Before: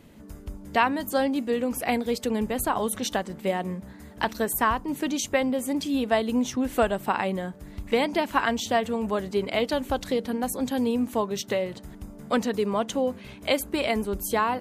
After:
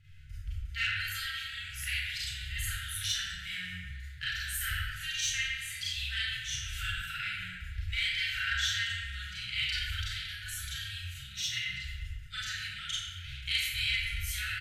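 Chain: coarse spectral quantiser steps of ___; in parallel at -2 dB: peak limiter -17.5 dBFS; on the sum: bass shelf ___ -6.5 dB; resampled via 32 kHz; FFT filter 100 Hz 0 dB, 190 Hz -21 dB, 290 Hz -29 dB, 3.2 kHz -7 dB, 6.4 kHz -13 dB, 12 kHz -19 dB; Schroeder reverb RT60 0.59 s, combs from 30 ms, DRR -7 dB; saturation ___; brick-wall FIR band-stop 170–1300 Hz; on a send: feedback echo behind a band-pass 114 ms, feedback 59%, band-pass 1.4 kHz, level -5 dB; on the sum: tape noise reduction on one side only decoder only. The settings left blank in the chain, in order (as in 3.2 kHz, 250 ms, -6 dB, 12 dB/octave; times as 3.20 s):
15 dB, 240 Hz, -20 dBFS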